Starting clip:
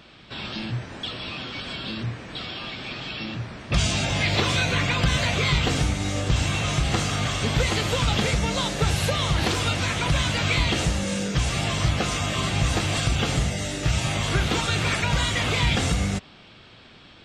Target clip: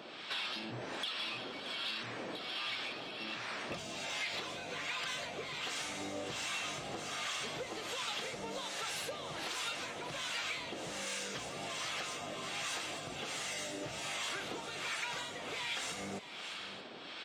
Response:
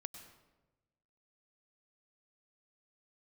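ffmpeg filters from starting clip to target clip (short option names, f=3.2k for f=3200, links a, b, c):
-filter_complex "[0:a]highpass=370,acompressor=threshold=-41dB:ratio=10,asoftclip=type=tanh:threshold=-36dB,acrossover=split=840[a][b];[a]aeval=exprs='val(0)*(1-0.7/2+0.7/2*cos(2*PI*1.3*n/s))':c=same[c];[b]aeval=exprs='val(0)*(1-0.7/2-0.7/2*cos(2*PI*1.3*n/s))':c=same[d];[c][d]amix=inputs=2:normalize=0,asplit=2[e][f];[f]aecho=0:1:626:0.237[g];[e][g]amix=inputs=2:normalize=0,volume=7.5dB"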